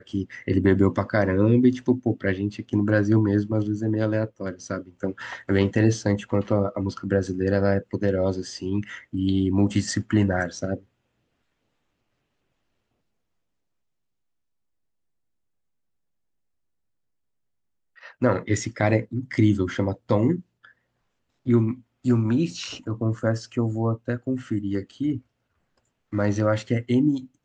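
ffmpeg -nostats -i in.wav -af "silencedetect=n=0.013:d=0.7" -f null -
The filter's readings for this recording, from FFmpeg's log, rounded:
silence_start: 10.78
silence_end: 18.03 | silence_duration: 7.25
silence_start: 20.65
silence_end: 21.46 | silence_duration: 0.81
silence_start: 25.19
silence_end: 26.13 | silence_duration: 0.94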